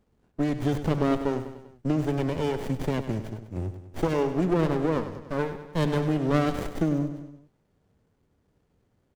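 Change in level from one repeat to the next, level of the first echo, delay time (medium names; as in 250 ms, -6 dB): -5.0 dB, -11.0 dB, 98 ms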